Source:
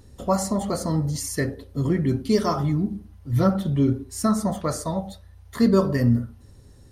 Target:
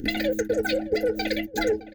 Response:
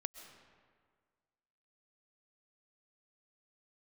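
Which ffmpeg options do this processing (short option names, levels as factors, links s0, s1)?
-filter_complex "[0:a]asplit=2[s0][s1];[s1]adelay=14,volume=0.299[s2];[s0][s2]amix=inputs=2:normalize=0,agate=range=0.0355:threshold=0.00794:ratio=16:detection=peak,lowshelf=f=120:g=8,asetrate=156996,aresample=44100,acompressor=mode=upward:threshold=0.0355:ratio=2.5,firequalizer=gain_entry='entry(110,0);entry(170,-10);entry(290,1);entry(450,-4);entry(710,-25);entry(1200,-14);entry(4200,-10)':delay=0.05:min_phase=1,aeval=exprs='0.266*sin(PI/2*2.24*val(0)/0.266)':c=same,acompressor=threshold=0.0891:ratio=6,asuperstop=centerf=1100:order=20:qfactor=2,asplit=2[s3][s4];[s4]adelay=615,lowpass=f=940:p=1,volume=0.211,asplit=2[s5][s6];[s6]adelay=615,lowpass=f=940:p=1,volume=0.37,asplit=2[s7][s8];[s8]adelay=615,lowpass=f=940:p=1,volume=0.37,asplit=2[s9][s10];[s10]adelay=615,lowpass=f=940:p=1,volume=0.37[s11];[s5][s7][s9][s11]amix=inputs=4:normalize=0[s12];[s3][s12]amix=inputs=2:normalize=0"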